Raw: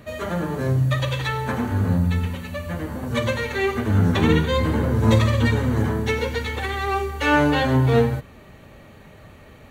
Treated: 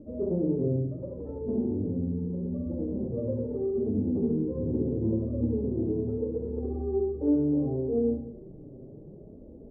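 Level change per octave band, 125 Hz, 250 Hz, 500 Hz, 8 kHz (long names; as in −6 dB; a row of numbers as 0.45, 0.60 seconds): −12.0 dB, −4.0 dB, −5.5 dB, below −40 dB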